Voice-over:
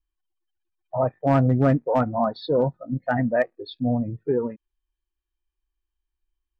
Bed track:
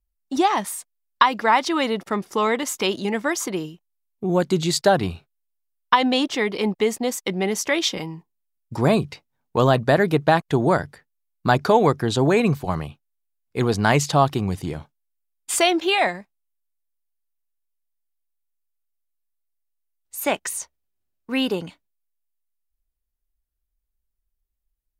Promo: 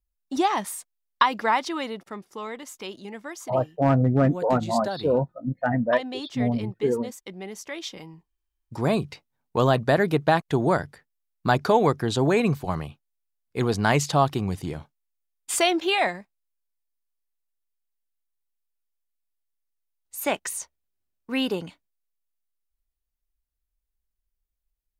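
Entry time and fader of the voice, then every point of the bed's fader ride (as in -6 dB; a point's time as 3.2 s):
2.55 s, -1.0 dB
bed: 1.43 s -3.5 dB
2.26 s -14 dB
7.7 s -14 dB
9.16 s -3 dB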